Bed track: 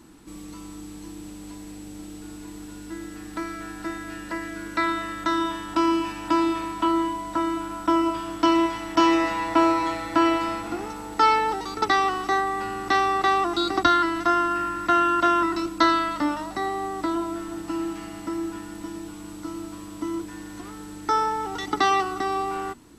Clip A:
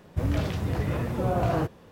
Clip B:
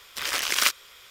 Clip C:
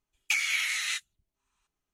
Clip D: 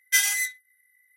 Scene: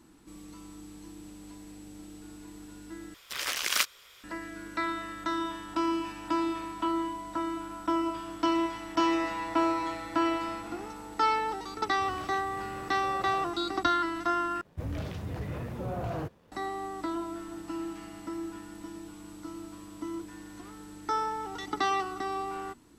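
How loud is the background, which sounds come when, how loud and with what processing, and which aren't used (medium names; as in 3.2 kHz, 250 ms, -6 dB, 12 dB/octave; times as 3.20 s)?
bed track -7.5 dB
3.14 s: replace with B -5 dB
11.84 s: add A -16.5 dB + tilt shelf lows -6 dB, about 720 Hz
14.61 s: replace with A -11.5 dB + waveshaping leveller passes 1
not used: C, D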